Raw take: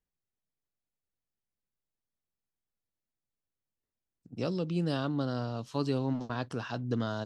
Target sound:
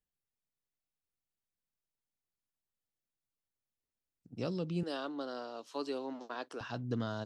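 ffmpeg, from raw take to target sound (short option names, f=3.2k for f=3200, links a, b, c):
-filter_complex "[0:a]asettb=1/sr,asplit=3[a][b][c];[a]atrim=end=4.834[d];[b]atrim=start=4.83:end=6.61,asetpts=PTS-STARTPTS,afade=t=in:d=0.004:c=qsin,afade=t=out:st=1.776:d=0.004:c=qsin,highpass=f=310:w=0.5412,highpass=f=310:w=1.3066[e];[c]atrim=start=6.606[f];[d][e]acrossfade=d=0.004:c1=hsin:c2=qsin[g];[g][f]acrossfade=d=0.004:c1=qsin:c2=hsin,volume=-4dB"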